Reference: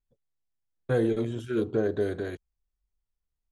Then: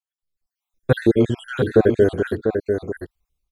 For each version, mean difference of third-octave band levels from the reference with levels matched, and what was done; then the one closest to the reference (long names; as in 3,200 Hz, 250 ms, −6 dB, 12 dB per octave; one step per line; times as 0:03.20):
6.0 dB: time-frequency cells dropped at random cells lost 62%
automatic gain control gain up to 15 dB
on a send: single-tap delay 695 ms −6 dB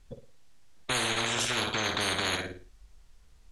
15.0 dB: low-pass filter 8,100 Hz 12 dB per octave
on a send: flutter between parallel walls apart 9.5 metres, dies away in 0.36 s
on the sum: every bin compressed towards the loudest bin 10 to 1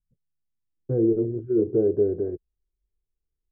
10.0 dB: adaptive Wiener filter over 9 samples
parametric band 250 Hz −8 dB 0.49 octaves
low-pass filter sweep 190 Hz → 380 Hz, 0:00.03–0:01.24
level +1.5 dB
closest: first